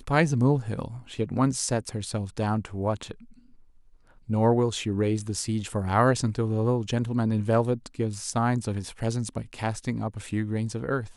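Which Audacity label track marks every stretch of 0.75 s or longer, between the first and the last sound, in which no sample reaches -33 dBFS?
3.120000	4.300000	silence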